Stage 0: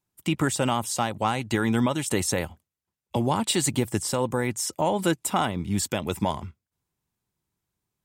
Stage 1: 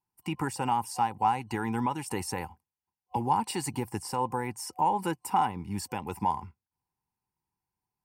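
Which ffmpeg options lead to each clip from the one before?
ffmpeg -i in.wav -af "superequalizer=8b=0.447:9b=3.55:13b=0.282:15b=0.501,volume=-8dB" out.wav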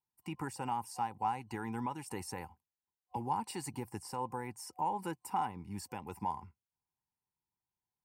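ffmpeg -i in.wav -af "equalizer=frequency=3200:width=3.1:gain=-3,volume=-8.5dB" out.wav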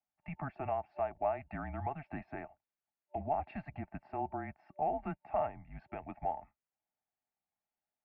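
ffmpeg -i in.wav -af "highpass=frequency=240:width_type=q:width=0.5412,highpass=frequency=240:width_type=q:width=1.307,lowpass=frequency=2700:width_type=q:width=0.5176,lowpass=frequency=2700:width_type=q:width=0.7071,lowpass=frequency=2700:width_type=q:width=1.932,afreqshift=-150,volume=1dB" out.wav

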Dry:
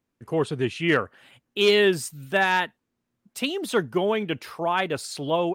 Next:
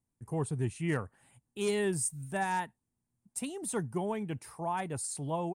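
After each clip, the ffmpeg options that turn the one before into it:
ffmpeg -i in.wav -af "firequalizer=gain_entry='entry(120,0);entry(220,-7);entry(330,-11);entry(560,-14);entry(840,-6);entry(1300,-16);entry(1900,-14);entry(3200,-21);entry(9200,6);entry(13000,-13)':delay=0.05:min_phase=1" out.wav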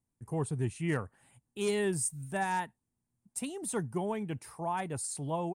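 ffmpeg -i in.wav -af anull out.wav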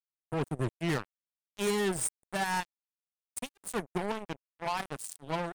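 ffmpeg -i in.wav -af "acrusher=bits=4:mix=0:aa=0.5" out.wav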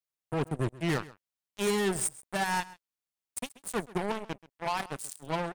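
ffmpeg -i in.wav -af "aecho=1:1:132:0.106,volume=1.5dB" out.wav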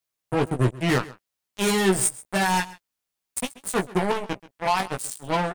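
ffmpeg -i in.wav -filter_complex "[0:a]asplit=2[link_01][link_02];[link_02]adelay=16,volume=-5dB[link_03];[link_01][link_03]amix=inputs=2:normalize=0,volume=7dB" out.wav

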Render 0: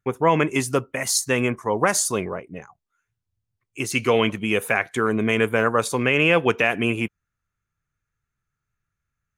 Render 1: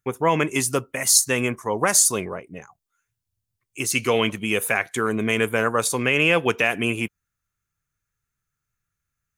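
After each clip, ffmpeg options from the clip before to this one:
ffmpeg -i in.wav -af "highshelf=frequency=4700:gain=11,volume=-2dB" out.wav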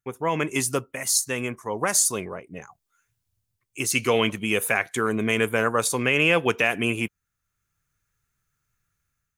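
ffmpeg -i in.wav -af "dynaudnorm=framelen=180:gausssize=5:maxgain=11.5dB,volume=-6.5dB" out.wav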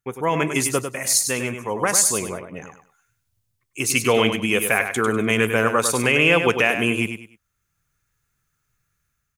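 ffmpeg -i in.wav -af "aecho=1:1:99|198|297:0.398|0.111|0.0312,volume=3dB" out.wav

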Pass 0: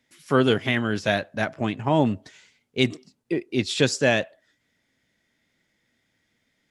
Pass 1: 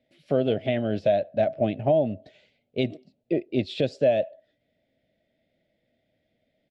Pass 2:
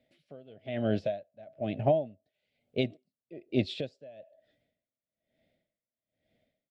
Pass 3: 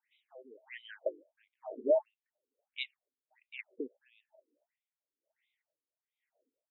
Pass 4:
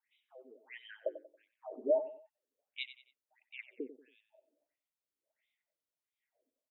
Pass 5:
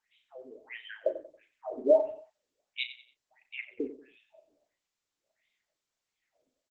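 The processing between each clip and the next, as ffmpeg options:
ffmpeg -i in.wav -af "firequalizer=gain_entry='entry(430,0);entry(620,13);entry(970,-17);entry(2500,-5);entry(4100,-7);entry(6200,-22);entry(11000,-24)':delay=0.05:min_phase=1,alimiter=limit=-12.5dB:level=0:latency=1:release=367" out.wav
ffmpeg -i in.wav -af "equalizer=frequency=330:width=1.5:gain=-2,aeval=exprs='val(0)*pow(10,-28*(0.5-0.5*cos(2*PI*1.1*n/s))/20)':channel_layout=same" out.wav
ffmpeg -i in.wav -af "tremolo=f=260:d=0.333,afftfilt=real='re*between(b*sr/1024,330*pow(2900/330,0.5+0.5*sin(2*PI*1.5*pts/sr))/1.41,330*pow(2900/330,0.5+0.5*sin(2*PI*1.5*pts/sr))*1.41)':imag='im*between(b*sr/1024,330*pow(2900/330,0.5+0.5*sin(2*PI*1.5*pts/sr))/1.41,330*pow(2900/330,0.5+0.5*sin(2*PI*1.5*pts/sr))*1.41)':win_size=1024:overlap=0.75,volume=2dB" out.wav
ffmpeg -i in.wav -af "aecho=1:1:92|184|276:0.224|0.0761|0.0259,volume=-2.5dB" out.wav
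ffmpeg -i in.wav -filter_complex "[0:a]asplit=2[link_01][link_02];[link_02]adelay=35,volume=-9dB[link_03];[link_01][link_03]amix=inputs=2:normalize=0,volume=7.5dB" -ar 48000 -c:a libopus -b:a 12k out.opus

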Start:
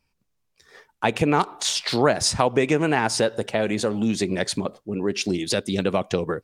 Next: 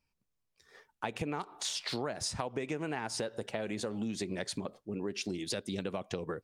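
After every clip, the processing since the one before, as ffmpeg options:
ffmpeg -i in.wav -af "acompressor=threshold=-23dB:ratio=6,volume=-9dB" out.wav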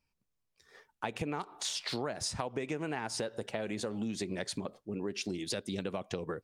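ffmpeg -i in.wav -af anull out.wav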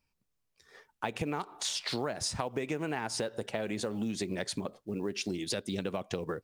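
ffmpeg -i in.wav -af "acrusher=bits=9:mode=log:mix=0:aa=0.000001,volume=2dB" out.wav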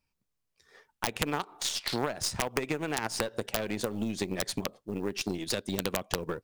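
ffmpeg -i in.wav -af "aeval=exprs='(mod(11.9*val(0)+1,2)-1)/11.9':channel_layout=same,aeval=exprs='0.0841*(cos(1*acos(clip(val(0)/0.0841,-1,1)))-cos(1*PI/2))+0.0168*(cos(3*acos(clip(val(0)/0.0841,-1,1)))-cos(3*PI/2))+0.00376*(cos(4*acos(clip(val(0)/0.0841,-1,1)))-cos(4*PI/2))':channel_layout=same,volume=6.5dB" out.wav

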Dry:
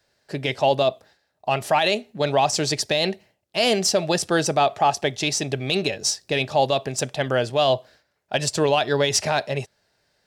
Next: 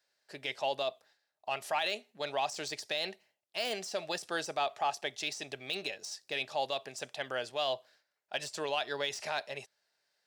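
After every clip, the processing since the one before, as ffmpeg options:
ffmpeg -i in.wav -af "deesser=0.55,highpass=frequency=1000:poles=1,volume=-9dB" out.wav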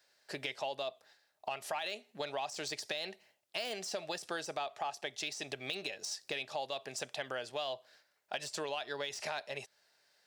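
ffmpeg -i in.wav -af "acompressor=threshold=-45dB:ratio=4,volume=7.5dB" out.wav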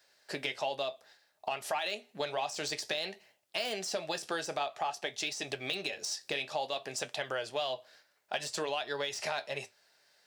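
ffmpeg -i in.wav -af "flanger=delay=9.2:depth=5.2:regen=-61:speed=0.56:shape=sinusoidal,volume=8dB" out.wav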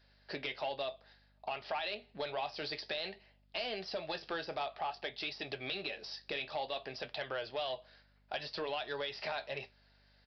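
ffmpeg -i in.wav -af "aresample=11025,asoftclip=type=tanh:threshold=-26.5dB,aresample=44100,aeval=exprs='val(0)+0.000501*(sin(2*PI*50*n/s)+sin(2*PI*2*50*n/s)/2+sin(2*PI*3*50*n/s)/3+sin(2*PI*4*50*n/s)/4+sin(2*PI*5*50*n/s)/5)':channel_layout=same,volume=-2dB" out.wav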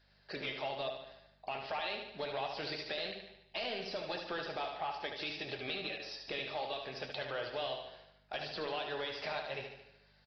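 ffmpeg -i in.wav -filter_complex "[0:a]asplit=2[link_01][link_02];[link_02]aecho=0:1:74|148|222|296|370|444|518:0.501|0.271|0.146|0.0789|0.0426|0.023|0.0124[link_03];[link_01][link_03]amix=inputs=2:normalize=0,volume=-1.5dB" -ar 32000 -c:a aac -b:a 24k out.aac

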